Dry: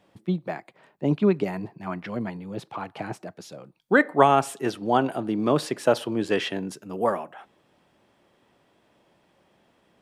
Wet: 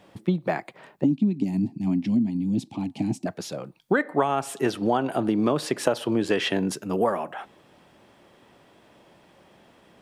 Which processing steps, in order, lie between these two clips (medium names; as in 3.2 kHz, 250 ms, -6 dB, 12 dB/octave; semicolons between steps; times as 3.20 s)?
1.04–3.26 s: FFT filter 170 Hz 0 dB, 260 Hz +13 dB, 450 Hz -19 dB, 820 Hz -13 dB, 1.4 kHz -29 dB, 2.4 kHz -10 dB, 4.5 kHz -4 dB, 7.4 kHz +1 dB, 14 kHz -8 dB; compression 8:1, threshold -27 dBFS, peak gain reduction 16 dB; trim +8 dB